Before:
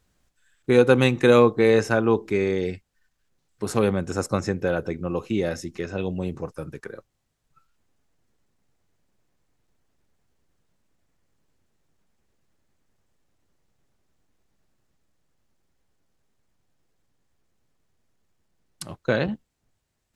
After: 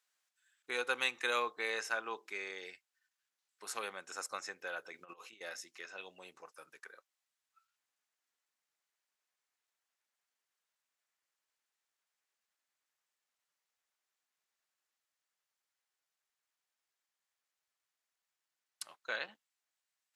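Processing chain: high-pass 1.2 kHz 12 dB/octave; 4.92–5.41 s: compressor with a negative ratio -46 dBFS, ratio -0.5; trim -7.5 dB

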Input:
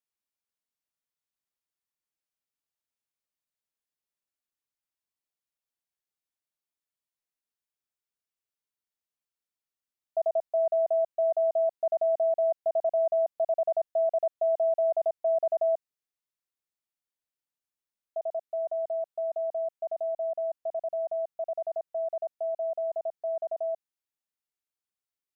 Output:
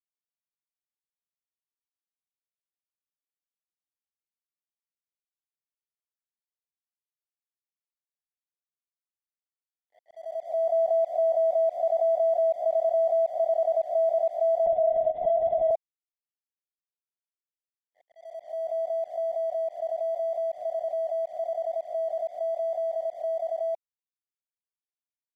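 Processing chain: reverse spectral sustain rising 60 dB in 0.42 s; dynamic bell 770 Hz, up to +6 dB, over -44 dBFS, Q 4.4; slow attack 657 ms; crossover distortion -59 dBFS; vibrato 0.85 Hz 7 cents; 14.66–15.71 s: LPC vocoder at 8 kHz whisper

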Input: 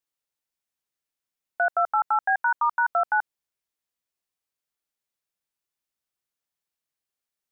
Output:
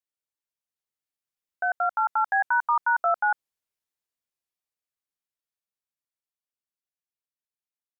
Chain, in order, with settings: Doppler pass-by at 2.65 s, 14 m/s, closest 15 m; tempo 0.94×

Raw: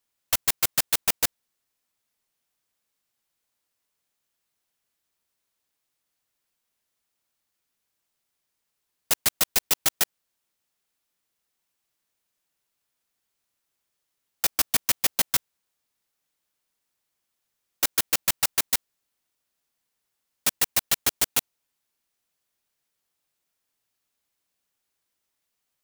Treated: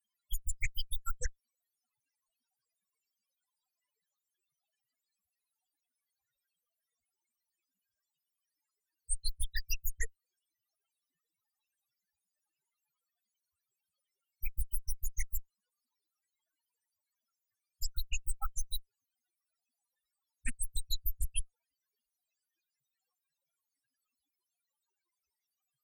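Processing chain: Chebyshev shaper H 5 -12 dB, 6 -14 dB, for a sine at -6 dBFS; loudest bins only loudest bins 4; loudspeaker Doppler distortion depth 0.54 ms; trim +3.5 dB

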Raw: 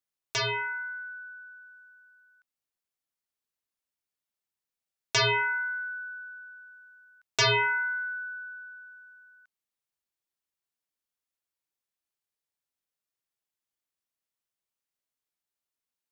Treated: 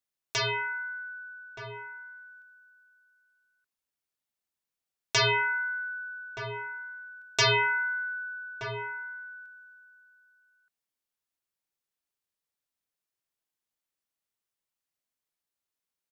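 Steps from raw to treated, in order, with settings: echo from a far wall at 210 m, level -8 dB

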